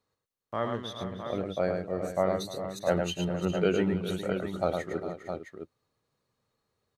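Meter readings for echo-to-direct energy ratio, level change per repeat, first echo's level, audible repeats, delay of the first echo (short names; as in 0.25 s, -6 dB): -2.0 dB, no steady repeat, -5.0 dB, 5, 0.107 s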